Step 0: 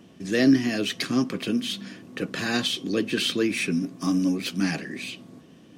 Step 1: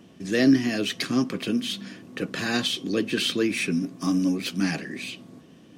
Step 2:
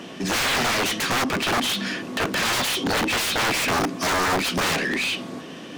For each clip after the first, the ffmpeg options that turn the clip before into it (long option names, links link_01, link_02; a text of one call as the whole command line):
ffmpeg -i in.wav -af anull out.wav
ffmpeg -i in.wav -filter_complex "[0:a]bandreject=frequency=105.9:width_type=h:width=4,bandreject=frequency=211.8:width_type=h:width=4,bandreject=frequency=317.7:width_type=h:width=4,aeval=exprs='(mod(15.8*val(0)+1,2)-1)/15.8':channel_layout=same,asplit=2[link_01][link_02];[link_02]highpass=frequency=720:poles=1,volume=20dB,asoftclip=type=tanh:threshold=-23.5dB[link_03];[link_01][link_03]amix=inputs=2:normalize=0,lowpass=frequency=4100:poles=1,volume=-6dB,volume=6.5dB" out.wav